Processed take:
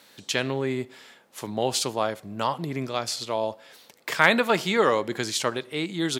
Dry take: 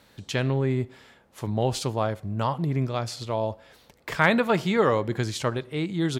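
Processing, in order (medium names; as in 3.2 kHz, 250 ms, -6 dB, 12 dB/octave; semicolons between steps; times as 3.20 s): high-pass 220 Hz 12 dB/octave; treble shelf 2.2 kHz +8 dB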